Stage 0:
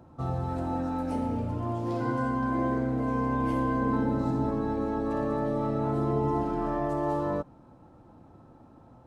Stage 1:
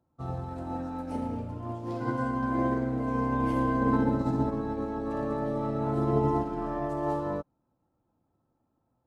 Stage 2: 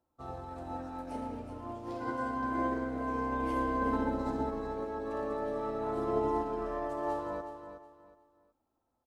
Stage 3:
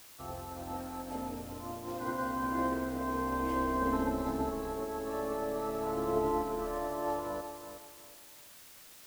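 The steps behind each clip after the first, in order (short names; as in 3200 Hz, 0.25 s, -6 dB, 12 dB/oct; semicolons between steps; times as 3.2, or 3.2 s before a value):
upward expander 2.5:1, over -42 dBFS; gain +3.5 dB
bell 140 Hz -15 dB 1.3 oct; on a send: feedback echo 0.368 s, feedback 27%, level -10 dB; on the sum: gain -2 dB
added noise white -54 dBFS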